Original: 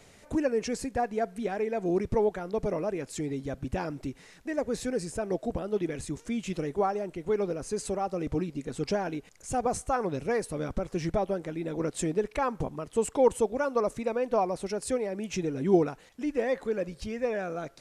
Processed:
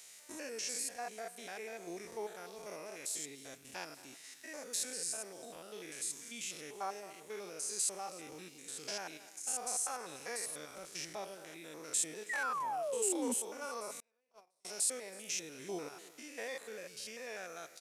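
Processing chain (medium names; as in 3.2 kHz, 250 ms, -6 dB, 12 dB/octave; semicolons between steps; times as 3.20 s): spectrogram pixelated in time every 100 ms; differentiator; speakerphone echo 220 ms, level -16 dB; 12.29–13.34 s: painted sound fall 230–2000 Hz -46 dBFS; on a send: delay 322 ms -22 dB; 14.00–14.65 s: on the sum: gate -46 dBFS, range -37 dB; trim +9 dB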